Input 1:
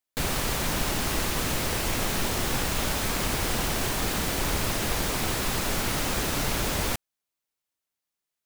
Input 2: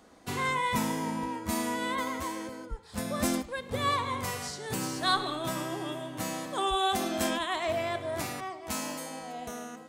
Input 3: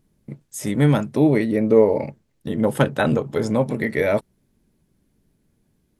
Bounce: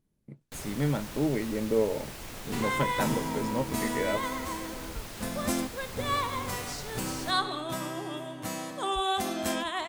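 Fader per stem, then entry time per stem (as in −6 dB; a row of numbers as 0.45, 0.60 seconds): −14.5, −1.0, −11.5 decibels; 0.35, 2.25, 0.00 seconds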